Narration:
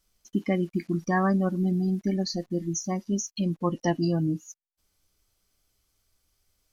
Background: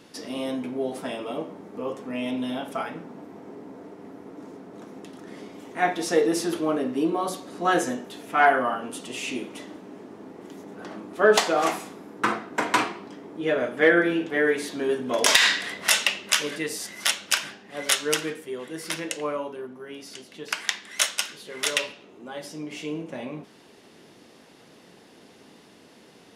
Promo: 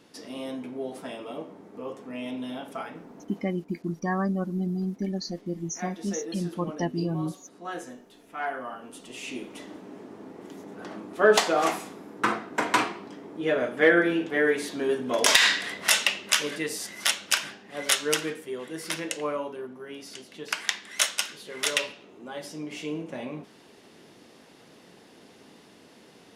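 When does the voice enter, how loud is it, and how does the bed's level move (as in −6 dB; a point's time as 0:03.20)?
2.95 s, −3.5 dB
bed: 0:03.39 −5.5 dB
0:03.63 −14 dB
0:08.40 −14 dB
0:09.77 −1 dB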